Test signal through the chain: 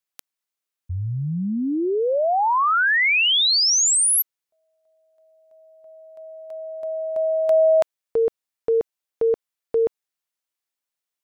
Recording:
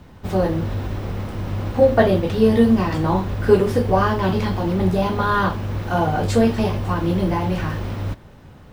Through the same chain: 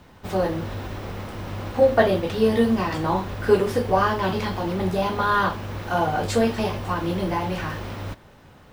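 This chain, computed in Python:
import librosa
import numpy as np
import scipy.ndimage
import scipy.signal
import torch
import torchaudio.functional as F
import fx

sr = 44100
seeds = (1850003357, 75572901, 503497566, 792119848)

y = fx.low_shelf(x, sr, hz=330.0, db=-8.5)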